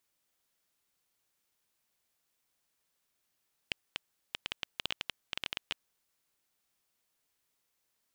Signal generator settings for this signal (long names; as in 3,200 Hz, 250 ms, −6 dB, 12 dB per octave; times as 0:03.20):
Geiger counter clicks 10 per second −15.5 dBFS 2.17 s